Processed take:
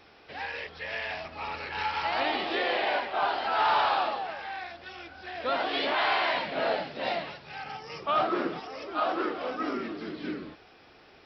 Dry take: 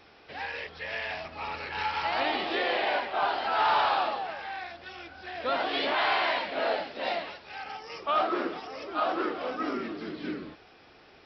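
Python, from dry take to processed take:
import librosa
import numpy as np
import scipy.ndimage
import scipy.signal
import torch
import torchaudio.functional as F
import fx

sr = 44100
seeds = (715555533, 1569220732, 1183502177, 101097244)

y = fx.peak_eq(x, sr, hz=140.0, db=14.5, octaves=0.75, at=(6.34, 8.62))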